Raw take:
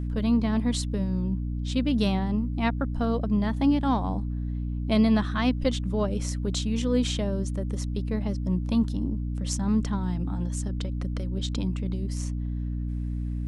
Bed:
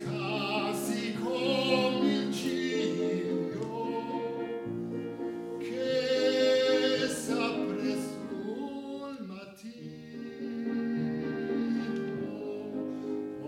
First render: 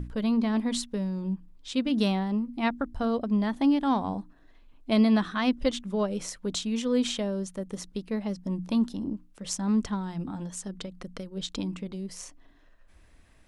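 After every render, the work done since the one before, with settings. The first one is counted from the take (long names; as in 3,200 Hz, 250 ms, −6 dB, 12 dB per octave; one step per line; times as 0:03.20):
mains-hum notches 60/120/180/240/300 Hz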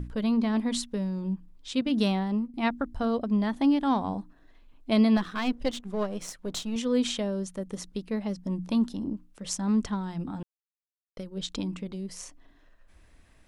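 0:01.81–0:02.54: downward expander −33 dBFS
0:05.17–0:06.76: gain on one half-wave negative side −7 dB
0:10.43–0:11.17: silence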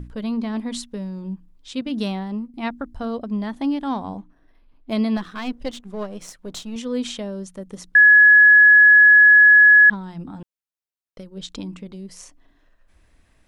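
0:04.17–0:04.93: linearly interpolated sample-rate reduction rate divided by 6×
0:07.95–0:09.90: beep over 1,690 Hz −7 dBFS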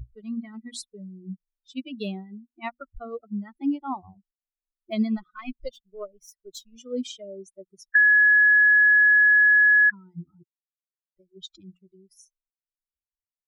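spectral dynamics exaggerated over time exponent 3
downward compressor 4 to 1, threshold −16 dBFS, peak gain reduction 6 dB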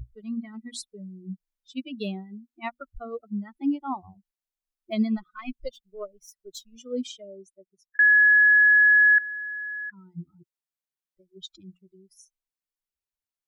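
0:06.92–0:07.99: fade out
0:09.18–0:10.04: downward compressor 5 to 1, threshold −35 dBFS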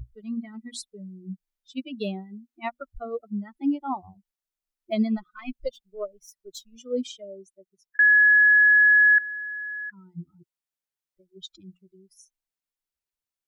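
notch filter 1,100 Hz, Q 24
dynamic equaliser 580 Hz, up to +5 dB, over −44 dBFS, Q 1.5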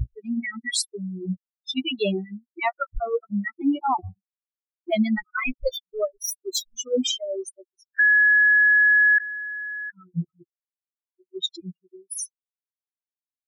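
spectral dynamics exaggerated over time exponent 3
envelope flattener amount 70%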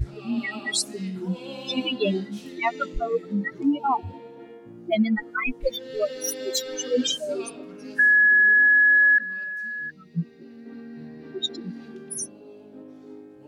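mix in bed −8.5 dB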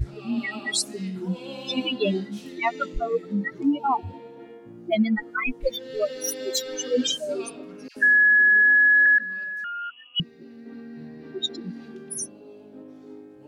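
0:07.88–0:09.06: all-pass dispersion lows, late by 86 ms, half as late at 1,300 Hz
0:09.64–0:10.20: voice inversion scrambler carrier 3,100 Hz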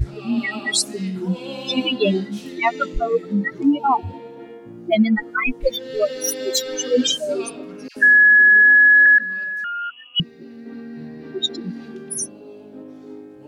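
level +5.5 dB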